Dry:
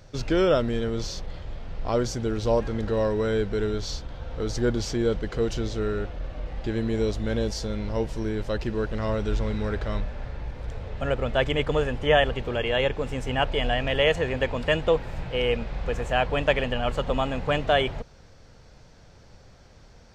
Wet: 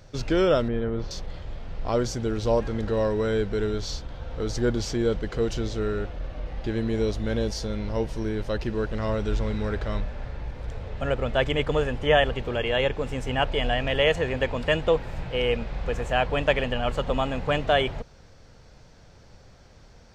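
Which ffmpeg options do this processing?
-filter_complex "[0:a]asettb=1/sr,asplit=3[a][b][c];[a]atrim=end=0.684[d];[b]atrim=start=0.68:end=1.11,asetpts=PTS-STARTPTS,afade=t=in:d=0.004:c=qsin,afade=t=out:st=0.426:d=0.004:c=qsin,lowpass=1.9k[e];[c]atrim=start=1.106[f];[d][e]acrossfade=d=0.004:c1=hsin:c2=qsin[g];[g][f]acrossfade=d=0.004:c1=qsin:c2=hsin,asettb=1/sr,asplit=3[h][i][j];[h]atrim=end=6.264[k];[i]atrim=start=6.26:end=8.7,asetpts=PTS-STARTPTS,afade=t=in:d=0.004:c=qsin,afade=t=out:st=2.436:d=0.004:c=qsin,bandreject=f=7.5k:w=12[l];[j]atrim=start=8.696[m];[k][l]acrossfade=d=0.004:c1=hsin:c2=qsin[n];[n][m]acrossfade=d=0.004:c1=qsin:c2=hsin"

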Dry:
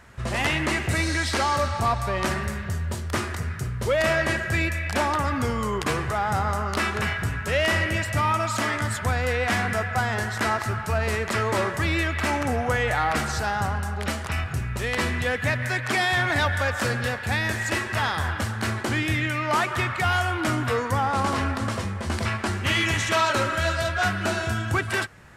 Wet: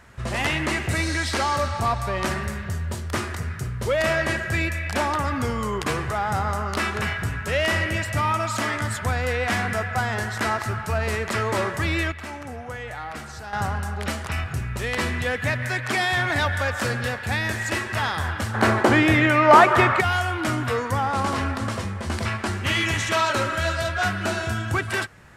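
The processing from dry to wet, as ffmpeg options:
-filter_complex "[0:a]asettb=1/sr,asplit=3[a][b][c];[a]atrim=end=18.544[d];[b]atrim=start=18.54:end=20.01,asetpts=PTS-STARTPTS,afade=t=in:d=0.004:c=qsin,afade=t=out:st=1.466:d=0.004:c=qsin,equalizer=f=620:w=0.35:g=13.5[e];[c]atrim=start=20.006[f];[d][e]acrossfade=d=0.004:c1=hsin:c2=qsin[g];[g][f]acrossfade=d=0.004:c1=qsin:c2=hsin,asplit=3[h][i][j];[h]atrim=end=12.122[k];[i]atrim=start=12.118:end=13.532,asetpts=PTS-STARTPTS,volume=-10.5dB[l];[j]atrim=start=13.528[m];[k][l]acrossfade=d=0.004:c1=hsin:c2=hsin[n];[n][m]acrossfade=d=0.004:c1=hsin:c2=hsin"

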